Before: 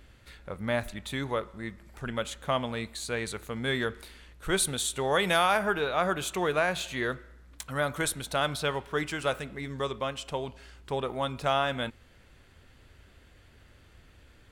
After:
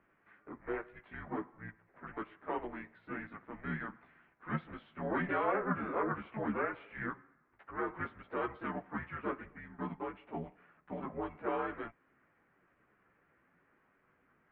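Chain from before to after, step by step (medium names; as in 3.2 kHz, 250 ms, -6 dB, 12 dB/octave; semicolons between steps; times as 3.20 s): chorus voices 4, 0.22 Hz, delay 14 ms, depth 4.4 ms; harmony voices +3 st -4 dB, +7 st -17 dB; mistuned SSB -230 Hz 380–2300 Hz; trim -5.5 dB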